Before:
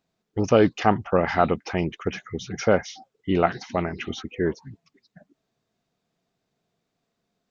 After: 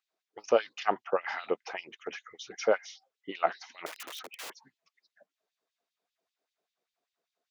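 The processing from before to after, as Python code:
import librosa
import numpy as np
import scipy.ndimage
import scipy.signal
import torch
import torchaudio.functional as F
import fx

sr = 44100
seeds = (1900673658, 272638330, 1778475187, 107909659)

y = fx.overflow_wrap(x, sr, gain_db=29.5, at=(3.86, 4.5))
y = fx.filter_lfo_highpass(y, sr, shape='sine', hz=5.1, low_hz=400.0, high_hz=3400.0, q=1.6)
y = y * librosa.db_to_amplitude(-8.0)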